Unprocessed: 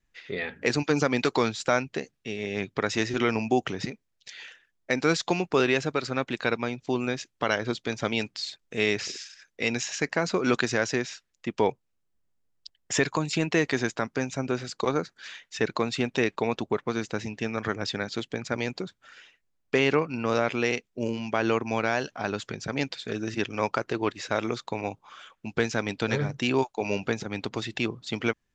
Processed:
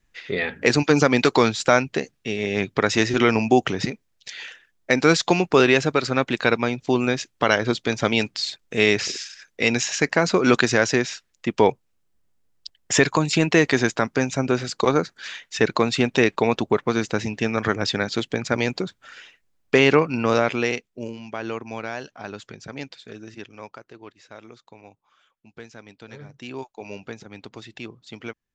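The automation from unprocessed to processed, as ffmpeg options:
-af "volume=14.5dB,afade=t=out:st=20.17:d=0.96:silence=0.251189,afade=t=out:st=22.7:d=1.14:silence=0.298538,afade=t=in:st=26.1:d=0.66:silence=0.421697"

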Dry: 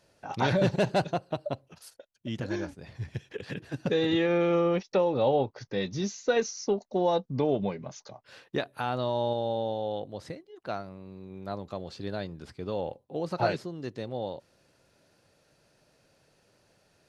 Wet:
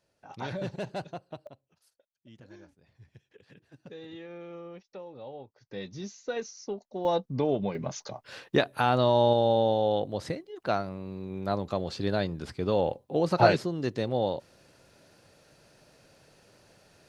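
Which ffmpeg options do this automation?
-af "asetnsamples=n=441:p=0,asendcmd='1.47 volume volume -18.5dB;5.7 volume volume -8dB;7.05 volume volume -0.5dB;7.75 volume volume 6.5dB',volume=-10dB"

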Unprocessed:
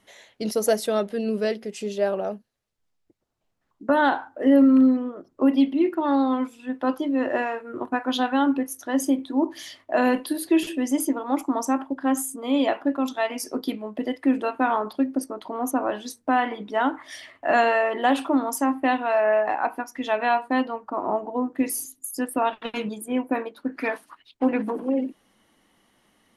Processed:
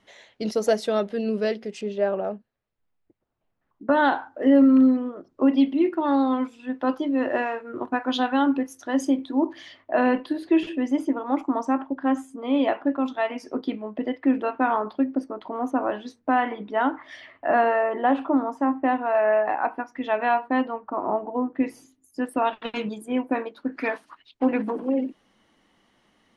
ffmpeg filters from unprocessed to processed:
-af "asetnsamples=n=441:p=0,asendcmd='1.81 lowpass f 2500;3.89 lowpass f 5800;9.53 lowpass f 2800;17.48 lowpass f 1600;19.15 lowpass f 2600;22.25 lowpass f 6300',lowpass=5.6k"

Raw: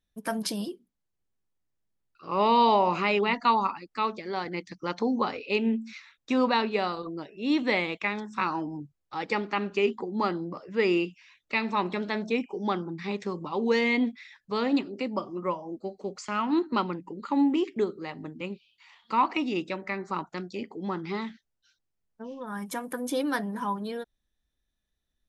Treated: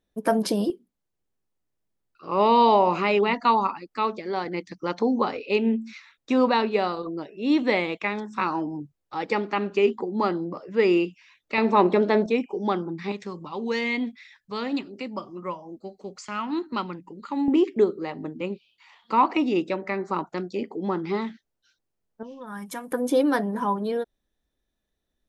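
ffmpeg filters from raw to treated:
-af "asetnsamples=n=441:p=0,asendcmd='0.7 equalizer g 5;11.58 equalizer g 14;12.26 equalizer g 5;13.12 equalizer g -3.5;17.48 equalizer g 7.5;22.23 equalizer g -2;22.92 equalizer g 9',equalizer=f=450:t=o:w=2.4:g=13"

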